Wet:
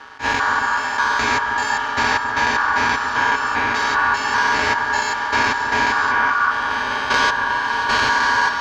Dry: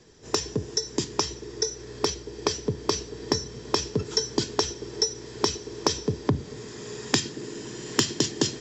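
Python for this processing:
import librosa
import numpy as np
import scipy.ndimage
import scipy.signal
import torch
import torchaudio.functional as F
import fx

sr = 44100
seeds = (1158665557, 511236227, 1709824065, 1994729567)

p1 = fx.spec_steps(x, sr, hold_ms=200)
p2 = scipy.signal.sosfilt(scipy.signal.butter(4, 3400.0, 'lowpass', fs=sr, output='sos'), p1)
p3 = p2 + 0.87 * np.pad(p2, (int(5.8 * sr / 1000.0), 0))[:len(p2)]
p4 = fx.leveller(p3, sr, passes=1)
p5 = fx.rider(p4, sr, range_db=10, speed_s=0.5)
p6 = p4 + (p5 * librosa.db_to_amplitude(2.0))
p7 = p6 * np.sin(2.0 * np.pi * 1300.0 * np.arange(len(p6)) / sr)
p8 = p7 + fx.echo_alternate(p7, sr, ms=270, hz=1700.0, feedback_pct=55, wet_db=-9.5, dry=0)
p9 = fx.attack_slew(p8, sr, db_per_s=270.0)
y = p9 * librosa.db_to_amplitude(8.0)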